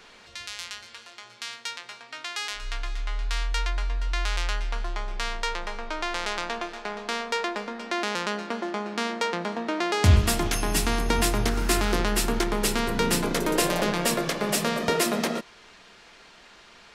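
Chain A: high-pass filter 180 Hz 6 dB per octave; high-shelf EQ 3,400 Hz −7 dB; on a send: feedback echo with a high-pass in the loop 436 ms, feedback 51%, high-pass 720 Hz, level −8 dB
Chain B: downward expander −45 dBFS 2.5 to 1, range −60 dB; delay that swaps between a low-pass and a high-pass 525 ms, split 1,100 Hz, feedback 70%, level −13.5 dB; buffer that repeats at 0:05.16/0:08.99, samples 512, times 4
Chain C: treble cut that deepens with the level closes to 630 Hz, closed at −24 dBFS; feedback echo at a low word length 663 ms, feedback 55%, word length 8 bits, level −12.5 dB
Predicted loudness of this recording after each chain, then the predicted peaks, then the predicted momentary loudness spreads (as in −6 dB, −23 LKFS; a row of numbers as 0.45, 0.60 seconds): −29.5, −27.0, −30.0 LKFS; −11.0, −7.5, −8.5 dBFS; 15, 16, 13 LU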